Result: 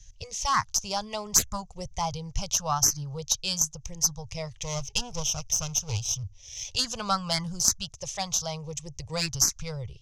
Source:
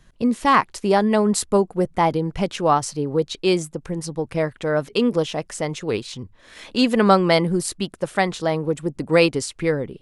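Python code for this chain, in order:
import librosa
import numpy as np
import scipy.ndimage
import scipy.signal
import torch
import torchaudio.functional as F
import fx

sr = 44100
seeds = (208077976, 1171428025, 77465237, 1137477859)

y = fx.lower_of_two(x, sr, delay_ms=0.33, at=(4.63, 6.76))
y = fx.curve_eq(y, sr, hz=(110.0, 260.0, 2800.0, 4300.0, 6200.0, 8900.0), db=(0, -28, -5, -5, 13, -17))
y = fx.cheby_harmonics(y, sr, harmonics=(2, 4, 8), levels_db=(-15, -16, -37), full_scale_db=-5.5)
y = fx.env_phaser(y, sr, low_hz=210.0, high_hz=2800.0, full_db=-14.0)
y = y * 10.0 ** (6.5 / 20.0)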